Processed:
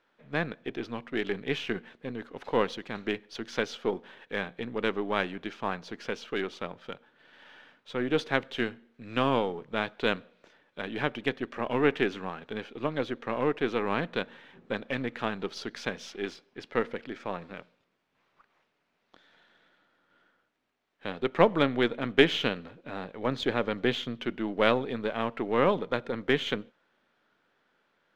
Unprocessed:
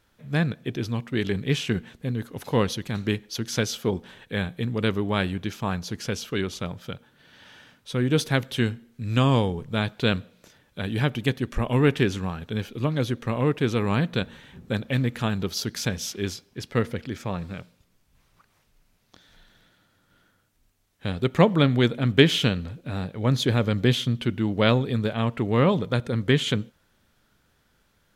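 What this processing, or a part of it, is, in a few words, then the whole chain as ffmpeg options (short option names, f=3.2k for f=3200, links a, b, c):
crystal radio: -af "highpass=320,lowpass=2.8k,aeval=exprs='if(lt(val(0),0),0.708*val(0),val(0))':c=same"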